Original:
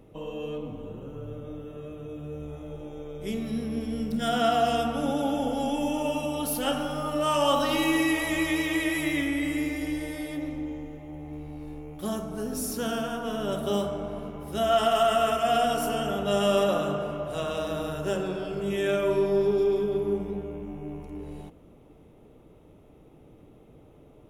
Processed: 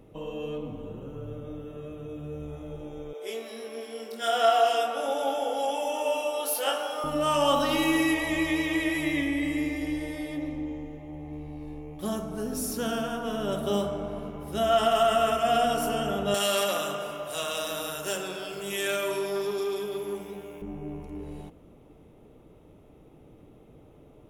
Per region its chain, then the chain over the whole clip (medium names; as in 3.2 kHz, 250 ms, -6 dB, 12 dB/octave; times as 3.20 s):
3.13–7.04 s: high-pass 410 Hz 24 dB/octave + doubling 22 ms -3.5 dB
8.14–12.01 s: Butterworth band-stop 1.4 kHz, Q 4.8 + treble shelf 6.6 kHz -6.5 dB
16.34–20.62 s: tilt EQ +4 dB/octave + transformer saturation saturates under 1.5 kHz
whole clip: none